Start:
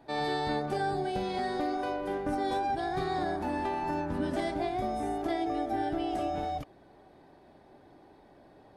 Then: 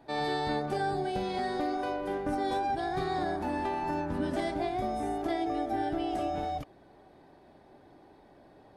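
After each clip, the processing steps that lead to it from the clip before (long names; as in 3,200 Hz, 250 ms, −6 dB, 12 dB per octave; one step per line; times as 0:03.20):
no processing that can be heard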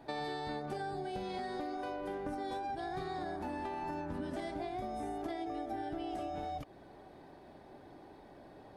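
downward compressor 6 to 1, threshold −39 dBFS, peak gain reduction 11.5 dB
level +2 dB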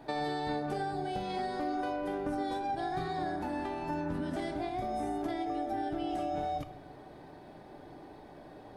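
rectangular room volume 420 cubic metres, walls mixed, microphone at 0.45 metres
level +3.5 dB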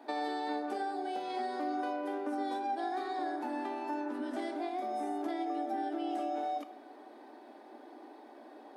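Chebyshev high-pass with heavy ripple 230 Hz, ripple 3 dB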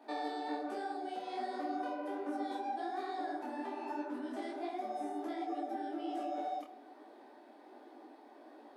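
micro pitch shift up and down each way 44 cents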